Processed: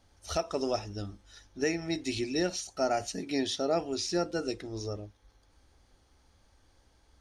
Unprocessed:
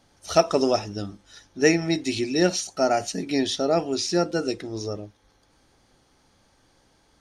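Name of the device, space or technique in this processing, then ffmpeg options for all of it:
car stereo with a boomy subwoofer: -filter_complex "[0:a]lowshelf=frequency=100:width_type=q:width=1.5:gain=9,alimiter=limit=-12dB:level=0:latency=1:release=437,asettb=1/sr,asplit=3[link_01][link_02][link_03];[link_01]atrim=end=3.194[link_04];[link_02]atrim=start=3.19:end=3.81,asetpts=PTS-STARTPTS,afade=type=in:duration=0.004:curve=qsin,afade=type=out:start_time=0.616:duration=0.004:curve=qsin,highpass=100[link_05];[link_03]atrim=start=3.806[link_06];[link_04][link_05]acrossfade=duration=0.004:curve1=hsin:curve2=qsin[link_07];[link_07][link_06]acrossfade=duration=0.004:curve1=qsin:curve2=hsin,volume=-6dB"

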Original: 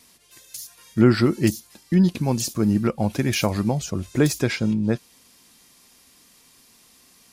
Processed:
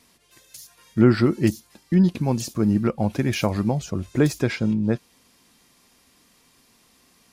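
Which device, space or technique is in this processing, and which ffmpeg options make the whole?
behind a face mask: -af "highshelf=frequency=3500:gain=-7.5"

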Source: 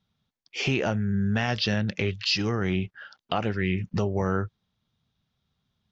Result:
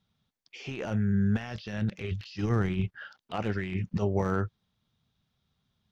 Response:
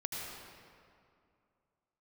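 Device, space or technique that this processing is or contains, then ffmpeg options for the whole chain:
de-esser from a sidechain: -filter_complex "[0:a]asettb=1/sr,asplit=3[link_01][link_02][link_03];[link_01]atrim=end=2.114[link_04];[link_02]atrim=start=2.11:end=2.98,asetpts=PTS-STARTPTS,afade=type=in:duration=0.004:curve=qsin,afade=type=out:start_time=0.866:duration=0.004:curve=qsin,lowshelf=frequency=160:gain=8[link_05];[link_03]atrim=start=2.976[link_06];[link_04][link_05]acrossfade=duration=0.004:curve1=hsin:curve2=qsin[link_07];[link_07][link_06]acrossfade=duration=0.004:curve1=qsin:curve2=hsin,asplit=2[link_08][link_09];[link_09]highpass=6700,apad=whole_len=260803[link_10];[link_08][link_10]sidechaincompress=threshold=-56dB:ratio=6:attack=0.75:release=23"

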